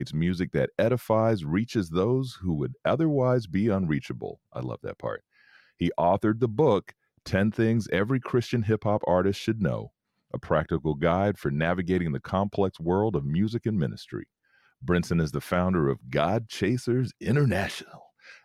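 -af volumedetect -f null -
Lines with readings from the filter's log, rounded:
mean_volume: -26.4 dB
max_volume: -9.4 dB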